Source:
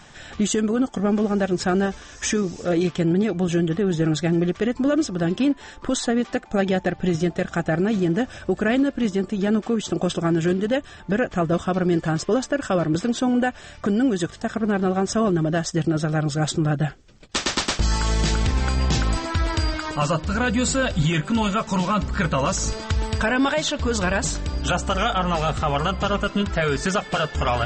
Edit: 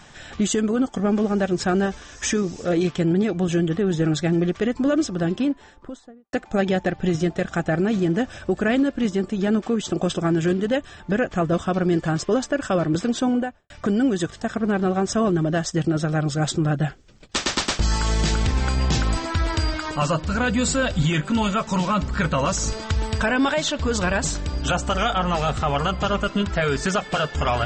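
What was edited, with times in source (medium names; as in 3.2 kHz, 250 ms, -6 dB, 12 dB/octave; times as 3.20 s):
5.08–6.33 s: studio fade out
13.25–13.70 s: studio fade out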